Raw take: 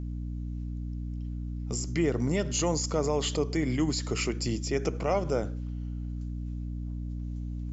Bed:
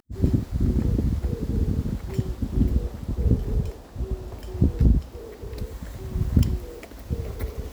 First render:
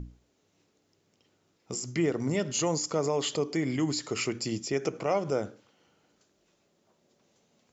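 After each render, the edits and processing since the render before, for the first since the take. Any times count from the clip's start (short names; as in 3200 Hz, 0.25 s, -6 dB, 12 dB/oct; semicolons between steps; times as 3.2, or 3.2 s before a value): notches 60/120/180/240/300 Hz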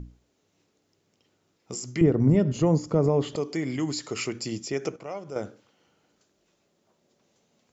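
2.01–3.36 tilt -4.5 dB/oct; 4.96–5.36 gain -8.5 dB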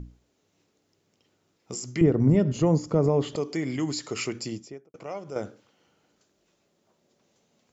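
4.36–4.94 studio fade out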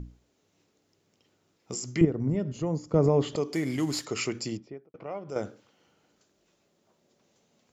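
2.05–2.94 gain -8 dB; 3.53–4.05 CVSD 64 kbps; 4.57–5.29 air absorption 310 m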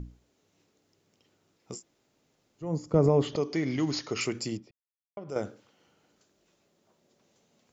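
1.75–2.66 room tone, crossfade 0.16 s; 3.27–4.21 brick-wall FIR low-pass 6800 Hz; 4.71–5.17 mute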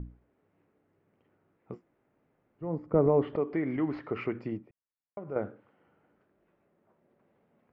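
dynamic EQ 140 Hz, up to -6 dB, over -39 dBFS, Q 1.5; LPF 2000 Hz 24 dB/oct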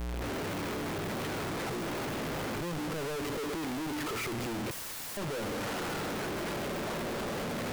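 infinite clipping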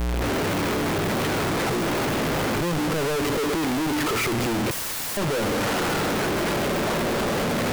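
gain +11 dB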